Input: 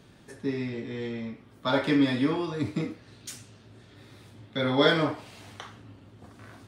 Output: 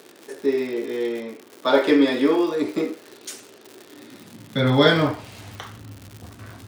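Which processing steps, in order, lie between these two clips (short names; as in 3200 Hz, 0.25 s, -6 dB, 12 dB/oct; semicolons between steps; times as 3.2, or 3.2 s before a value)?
crackle 170/s -36 dBFS; high-pass sweep 380 Hz -> 73 Hz, 3.79–5.09; gain +5 dB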